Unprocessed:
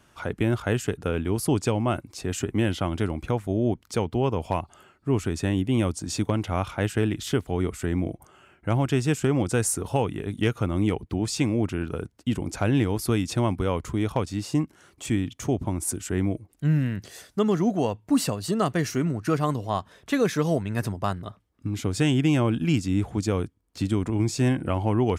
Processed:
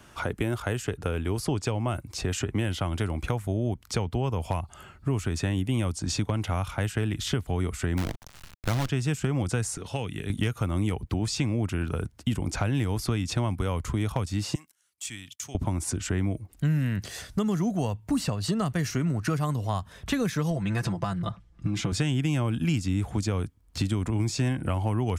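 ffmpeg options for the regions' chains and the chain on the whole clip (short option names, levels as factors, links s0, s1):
-filter_complex "[0:a]asettb=1/sr,asplit=3[s0][s1][s2];[s0]atrim=end=7.974[s3];[s1]atrim=start=7.97:end=8.89,asetpts=PTS-STARTPTS,afade=t=in:d=0.004:c=qsin,afade=t=out:st=0.916:d=0.004:c=qsin,lowpass=f=5700:t=q:w=7.9,acrusher=bits=5:dc=4:mix=0:aa=0.000001[s4];[s2]atrim=start=8.886[s5];[s3][s4]acrossfade=d=0.004:c1=hsin:c2=qsin[s6];[s6][s5]acrossfade=d=0.004:c1=qsin:c2=hsin,asettb=1/sr,asplit=3[s7][s8][s9];[s7]atrim=end=9.774[s10];[s8]atrim=start=9.77:end=10.3,asetpts=PTS-STARTPTS,afade=t=in:d=0.004:c=qsin,afade=t=out:st=0.526:d=0.004:c=qsin,highpass=f=650:p=1,equalizer=f=970:t=o:w=1.6:g=-10[s11];[s9]atrim=start=10.296[s12];[s10][s11]acrossfade=d=0.004:c1=hsin:c2=qsin[s13];[s13][s12]acrossfade=d=0.004:c1=qsin:c2=hsin,asettb=1/sr,asplit=3[s14][s15][s16];[s14]atrim=end=14.554[s17];[s15]atrim=start=14.55:end=15.55,asetpts=PTS-STARTPTS,afade=t=in:d=0.004:c=qsin,afade=t=out:st=0.996:d=0.004:c=qsin,agate=range=0.158:threshold=0.00355:ratio=16:release=100:detection=peak,aderivative[s18];[s16]atrim=start=15.546[s19];[s17][s18]acrossfade=d=0.004:c1=hsin:c2=qsin[s20];[s20][s19]acrossfade=d=0.004:c1=qsin:c2=hsin,asettb=1/sr,asplit=3[s21][s22][s23];[s21]atrim=end=20.504[s24];[s22]atrim=start=20.5:end=21.92,asetpts=PTS-STARTPTS,afade=t=in:d=0.004:c=qsin,afade=t=out:st=1.416:d=0.004:c=qsin,lowpass=7300,aecho=1:1:5.9:0.81,atrim=end_sample=62622,acompressor=threshold=0.0562:ratio=2.5:attack=3.2:release=140:knee=1:detection=peak[s25];[s23]atrim=start=21.916[s26];[s24][s25]acrossfade=d=0.004:c1=hsin:c2=qsin[s27];[s27][s26]acrossfade=d=0.004:c1=qsin:c2=hsin,asubboost=boost=7:cutoff=130,acrossover=split=250|7000[s28][s29][s30];[s28]acompressor=threshold=0.0112:ratio=4[s31];[s29]acompressor=threshold=0.0158:ratio=4[s32];[s30]acompressor=threshold=0.002:ratio=4[s33];[s31][s32][s33]amix=inputs=3:normalize=0,volume=2.11"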